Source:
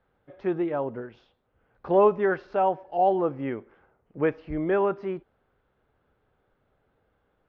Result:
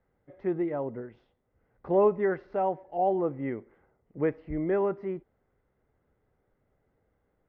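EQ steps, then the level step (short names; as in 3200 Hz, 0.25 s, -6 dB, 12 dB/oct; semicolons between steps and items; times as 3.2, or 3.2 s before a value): tilt shelf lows +6.5 dB, about 1100 Hz; bell 2000 Hz +12 dB 0.23 oct; -7.5 dB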